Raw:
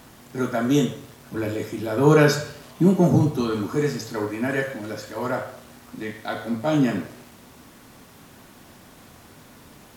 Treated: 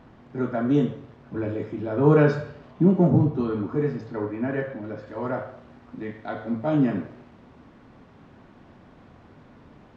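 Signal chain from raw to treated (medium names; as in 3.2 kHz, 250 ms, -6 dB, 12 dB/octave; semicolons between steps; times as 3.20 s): tape spacing loss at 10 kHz 39 dB, from 3.09 s at 10 kHz 45 dB, from 5.06 s at 10 kHz 36 dB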